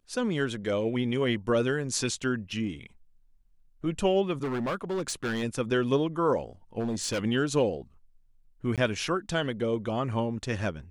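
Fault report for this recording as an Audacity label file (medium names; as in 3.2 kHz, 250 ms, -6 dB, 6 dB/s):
4.430000	5.440000	clipped -26.5 dBFS
6.790000	7.210000	clipped -25.5 dBFS
8.760000	8.780000	dropout 17 ms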